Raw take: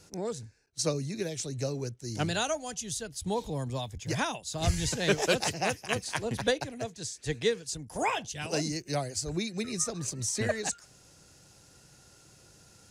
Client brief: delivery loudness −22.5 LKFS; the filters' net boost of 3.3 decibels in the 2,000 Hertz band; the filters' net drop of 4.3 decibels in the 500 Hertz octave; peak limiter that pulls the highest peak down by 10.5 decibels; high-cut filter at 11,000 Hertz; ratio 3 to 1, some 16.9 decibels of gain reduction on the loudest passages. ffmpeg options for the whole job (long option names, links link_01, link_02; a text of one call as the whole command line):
ffmpeg -i in.wav -af "lowpass=11000,equalizer=frequency=500:width_type=o:gain=-5.5,equalizer=frequency=2000:width_type=o:gain=4.5,acompressor=threshold=-45dB:ratio=3,volume=24.5dB,alimiter=limit=-11.5dB:level=0:latency=1" out.wav